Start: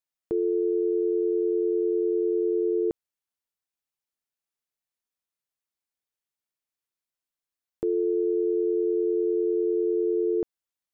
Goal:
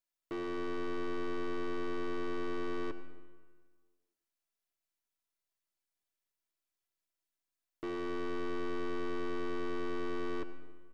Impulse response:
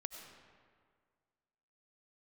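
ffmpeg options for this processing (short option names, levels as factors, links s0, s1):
-filter_complex "[0:a]aeval=exprs='if(lt(val(0),0),0.708*val(0),val(0))':c=same,aecho=1:1:3:0.43,aeval=exprs='(tanh(70.8*val(0)+0.4)-tanh(0.4))/70.8':c=same,asplit=2[s0][s1];[1:a]atrim=start_sample=2205,asetrate=52920,aresample=44100[s2];[s1][s2]afir=irnorm=-1:irlink=0,volume=1.68[s3];[s0][s3]amix=inputs=2:normalize=0,volume=0.562"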